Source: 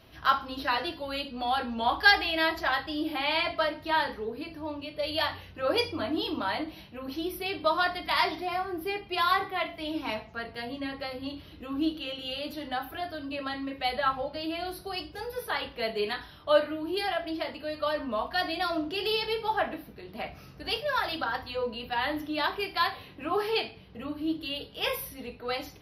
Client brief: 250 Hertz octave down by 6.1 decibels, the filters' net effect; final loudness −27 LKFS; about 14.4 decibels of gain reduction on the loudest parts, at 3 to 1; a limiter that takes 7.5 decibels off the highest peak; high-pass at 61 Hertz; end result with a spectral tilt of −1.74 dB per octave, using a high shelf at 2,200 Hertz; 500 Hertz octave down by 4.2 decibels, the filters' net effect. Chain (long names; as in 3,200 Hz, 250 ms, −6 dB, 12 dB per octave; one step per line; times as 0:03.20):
high-pass filter 61 Hz
parametric band 250 Hz −6.5 dB
parametric band 500 Hz −3.5 dB
high-shelf EQ 2,200 Hz −5.5 dB
downward compressor 3 to 1, threshold −37 dBFS
level +14 dB
brickwall limiter −16 dBFS